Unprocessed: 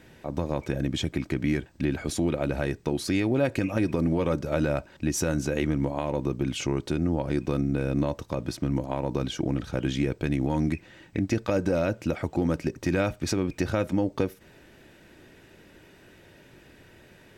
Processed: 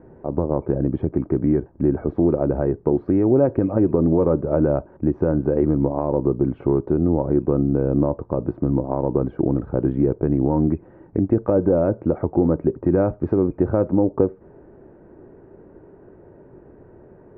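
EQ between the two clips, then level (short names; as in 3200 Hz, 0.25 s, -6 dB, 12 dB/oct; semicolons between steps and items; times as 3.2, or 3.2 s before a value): LPF 1100 Hz 24 dB/oct; bell 400 Hz +6.5 dB 0.53 oct; +5.5 dB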